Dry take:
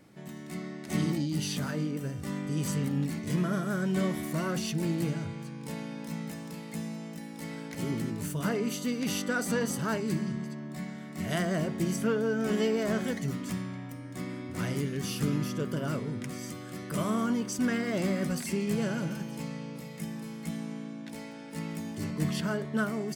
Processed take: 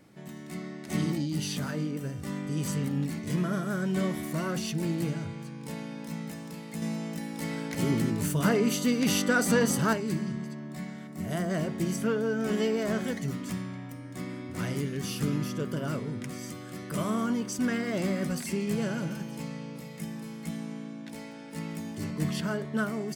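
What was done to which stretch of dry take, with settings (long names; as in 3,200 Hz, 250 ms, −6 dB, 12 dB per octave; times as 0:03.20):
0:06.82–0:09.93: clip gain +5.5 dB
0:11.07–0:11.50: parametric band 3,000 Hz −7.5 dB 2.5 octaves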